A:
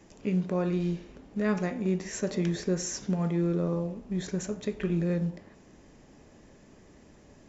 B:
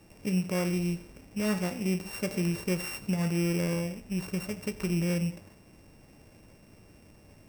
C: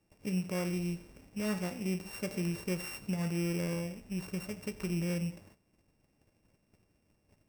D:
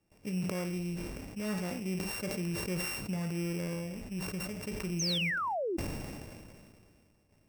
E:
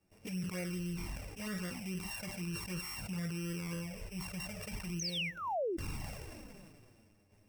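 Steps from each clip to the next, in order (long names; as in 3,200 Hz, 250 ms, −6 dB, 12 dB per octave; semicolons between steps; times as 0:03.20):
samples sorted by size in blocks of 16 samples; thirty-one-band graphic EQ 100 Hz +8 dB, 250 Hz −4 dB, 400 Hz −4 dB, 3,150 Hz −10 dB
noise gate −52 dBFS, range −13 dB; level −5 dB
sound drawn into the spectrogram fall, 0:04.99–0:05.77, 310–6,600 Hz −31 dBFS; level that may fall only so fast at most 25 dB per second; level −2 dB
dynamic equaliser 260 Hz, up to −7 dB, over −49 dBFS, Q 0.72; brickwall limiter −32.5 dBFS, peak gain reduction 10 dB; flanger swept by the level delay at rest 11.2 ms, full sweep at −35 dBFS; level +3.5 dB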